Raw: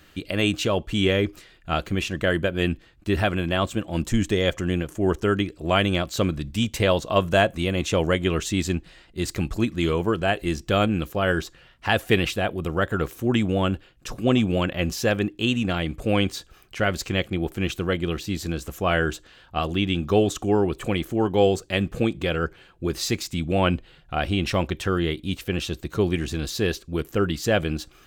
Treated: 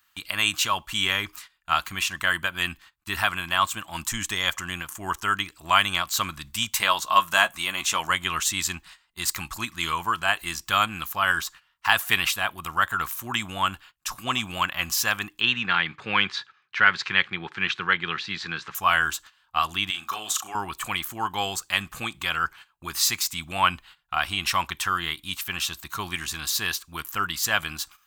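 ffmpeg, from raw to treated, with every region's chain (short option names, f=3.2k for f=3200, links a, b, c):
-filter_complex "[0:a]asettb=1/sr,asplit=3[a][b][c];[a]atrim=end=6.754[d];[b]atrim=start=6.75:end=8.1,asetpts=PTS-STARTPTS,afade=t=in:d=0.004:c=qsin,afade=t=out:st=1.346:d=0.004:c=qsin,equalizer=f=90:t=o:w=1.1:g=-10,asplit=2[e][f];[f]adelay=14,volume=-11dB[g];[e][g]amix=inputs=2:normalize=0,atrim=end_sample=59535[h];[c]atrim=start=8.096[i];[d][h]acrossfade=d=0.004:c1=hsin:c2=qsin[j];[j][i]acrossfade=d=0.004:c1=qsin:c2=hsin,asettb=1/sr,asplit=3[k][l][m];[k]atrim=end=15.404[n];[l]atrim=start=15.4:end=18.75,asetpts=PTS-STARTPTS,afade=t=in:d=0.004:c=qsin,afade=t=out:st=3.346:d=0.004:c=qsin,acontrast=22,highpass=f=120:w=0.5412,highpass=f=120:w=1.3066,equalizer=f=280:t=q:w=4:g=-7,equalizer=f=430:t=q:w=4:g=7,equalizer=f=670:t=q:w=4:g=-10,equalizer=f=1.1k:t=q:w=4:g=-5,equalizer=f=1.7k:t=q:w=4:g=4,equalizer=f=3k:t=q:w=4:g=-4,lowpass=f=3.9k:w=0.5412,lowpass=f=3.9k:w=1.3066[o];[m]atrim=start=18.746[p];[n][o]acrossfade=d=0.004:c1=hsin:c2=qsin[q];[q][p]acrossfade=d=0.004:c1=qsin:c2=hsin,asettb=1/sr,asplit=3[r][s][t];[r]atrim=end=19.904[u];[s]atrim=start=19.9:end=20.55,asetpts=PTS-STARTPTS,afade=t=in:d=0.004:c=qsin,afade=t=out:st=0.646:d=0.004:c=qsin,highpass=f=690:p=1,acompressor=threshold=-26dB:ratio=2.5:attack=3.2:release=140:knee=1:detection=peak,asplit=2[v][w];[w]adelay=37,volume=-6dB[x];[v][x]amix=inputs=2:normalize=0,atrim=end_sample=28665[y];[t]atrim=start=20.546[z];[u][y]acrossfade=d=0.004:c1=hsin:c2=qsin[aa];[aa][z]acrossfade=d=0.004:c1=qsin:c2=hsin,aemphasis=mode=production:type=50kf,agate=range=-16dB:threshold=-42dB:ratio=16:detection=peak,lowshelf=f=700:t=q:w=3:g=-13"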